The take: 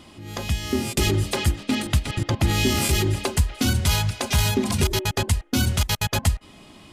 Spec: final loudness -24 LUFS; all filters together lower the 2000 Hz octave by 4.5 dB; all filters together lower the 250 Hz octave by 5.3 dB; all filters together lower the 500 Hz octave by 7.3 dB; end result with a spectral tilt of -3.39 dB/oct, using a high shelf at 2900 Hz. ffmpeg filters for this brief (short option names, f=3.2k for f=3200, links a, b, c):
-af "equalizer=f=250:t=o:g=-4.5,equalizer=f=500:t=o:g=-8.5,equalizer=f=2k:t=o:g=-7.5,highshelf=f=2.9k:g=4,volume=-0.5dB"